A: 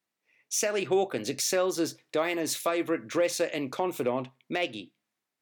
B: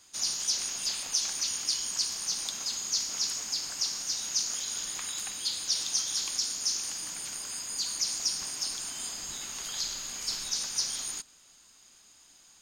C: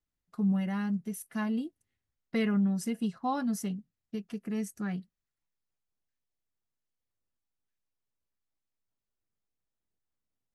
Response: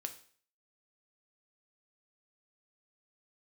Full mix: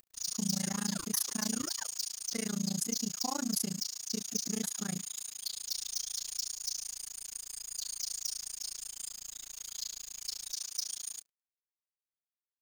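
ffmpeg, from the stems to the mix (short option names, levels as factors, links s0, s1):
-filter_complex "[0:a]aeval=exprs='val(0)*sin(2*PI*1100*n/s+1100*0.4/3.4*sin(2*PI*3.4*n/s))':c=same,volume=0.237,asplit=3[s0][s1][s2];[s0]atrim=end=2.02,asetpts=PTS-STARTPTS,afade=t=out:st=2.016:d=0.004:c=hsin[s3];[s1]atrim=start=2.02:end=4.63,asetpts=PTS-STARTPTS,volume=0[s4];[s2]atrim=start=4.63,asetpts=PTS-STARTPTS,afade=t=in:d=0.004:c=hsin[s5];[s3][s4][s5]concat=n=3:v=0:a=1[s6];[1:a]asoftclip=type=hard:threshold=0.0596,adynamicequalizer=threshold=0.00398:dfrequency=2000:dqfactor=0.7:tfrequency=2000:tqfactor=0.7:attack=5:release=100:ratio=0.375:range=3:mode=boostabove:tftype=highshelf,volume=0.15,asplit=2[s7][s8];[s8]volume=0.596[s9];[2:a]volume=1.33[s10];[s6][s10]amix=inputs=2:normalize=0,acompressor=mode=upward:threshold=0.00794:ratio=2.5,alimiter=level_in=1.19:limit=0.0631:level=0:latency=1,volume=0.841,volume=1[s11];[3:a]atrim=start_sample=2205[s12];[s9][s12]afir=irnorm=-1:irlink=0[s13];[s7][s11][s13]amix=inputs=3:normalize=0,aemphasis=mode=production:type=50kf,tremolo=f=28:d=0.974,aeval=exprs='sgn(val(0))*max(abs(val(0))-0.00282,0)':c=same"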